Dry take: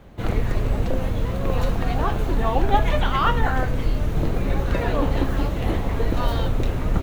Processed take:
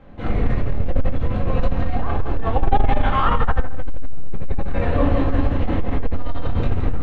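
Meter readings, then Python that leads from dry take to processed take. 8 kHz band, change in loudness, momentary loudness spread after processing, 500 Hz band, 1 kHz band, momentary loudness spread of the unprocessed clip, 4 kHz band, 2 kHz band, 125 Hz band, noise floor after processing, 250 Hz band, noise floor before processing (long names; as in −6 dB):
can't be measured, +0.5 dB, 10 LU, −0.5 dB, +0.5 dB, 4 LU, −5.0 dB, −1.5 dB, +1.0 dB, −21 dBFS, +1.0 dB, −26 dBFS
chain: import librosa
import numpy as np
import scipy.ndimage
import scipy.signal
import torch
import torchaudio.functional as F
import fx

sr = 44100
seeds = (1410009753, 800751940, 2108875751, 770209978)

p1 = scipy.signal.sosfilt(scipy.signal.butter(2, 3000.0, 'lowpass', fs=sr, output='sos'), x)
p2 = p1 + fx.echo_feedback(p1, sr, ms=169, feedback_pct=33, wet_db=-6, dry=0)
p3 = fx.room_shoebox(p2, sr, seeds[0], volume_m3=370.0, walls='furnished', distance_m=2.1)
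p4 = fx.transformer_sat(p3, sr, knee_hz=47.0)
y = p4 * librosa.db_to_amplitude(-2.0)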